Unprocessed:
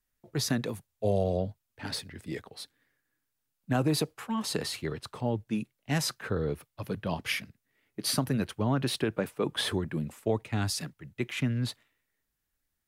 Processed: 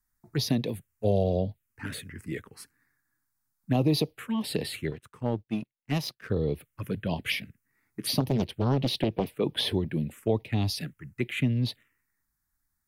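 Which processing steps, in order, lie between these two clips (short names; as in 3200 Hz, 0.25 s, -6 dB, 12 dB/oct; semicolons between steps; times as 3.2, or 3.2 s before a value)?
envelope phaser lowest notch 500 Hz, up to 1500 Hz, full sweep at -26.5 dBFS; 4.91–6.3 power-law curve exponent 1.4; 8.2–9.27 Doppler distortion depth 0.68 ms; gain +3.5 dB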